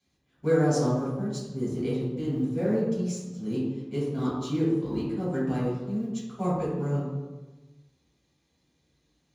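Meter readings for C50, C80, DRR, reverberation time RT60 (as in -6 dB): -0.5 dB, 2.5 dB, -9.5 dB, 1.2 s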